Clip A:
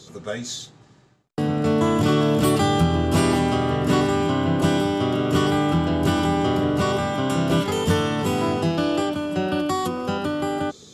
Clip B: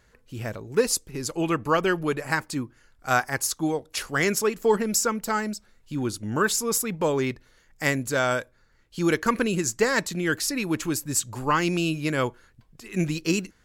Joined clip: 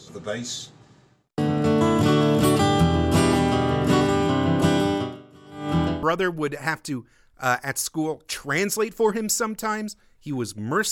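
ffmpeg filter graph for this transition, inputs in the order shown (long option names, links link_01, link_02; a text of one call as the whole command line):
ffmpeg -i cue0.wav -i cue1.wav -filter_complex "[0:a]asettb=1/sr,asplit=3[link_01][link_02][link_03];[link_01]atrim=end=4.914[link_04];[link_02]atrim=start=4.91:end=6.03,asetpts=PTS-STARTPTS,afade=type=in:duration=0.004:curve=qsin,afade=type=out:start_time=1.116:duration=0.004:curve=qsin,aeval=exprs='val(0)*pow(10,-30*(0.5-0.5*cos(2*PI*1.1*n/s))/20)':channel_layout=same[link_05];[link_03]atrim=start=6.026[link_06];[link_04][link_05]acrossfade=duration=0.004:curve1=hsin:curve2=qsin[link_07];[link_07][link_06]acrossfade=duration=0.004:curve1=qsin:curve2=hsin,apad=whole_dur=10.91,atrim=end=10.91,atrim=end=6.032[link_08];[1:a]atrim=start=1.678:end=6.56[link_09];[link_08][link_09]acrossfade=duration=0.004:curve1=hsin:curve2=hsin" out.wav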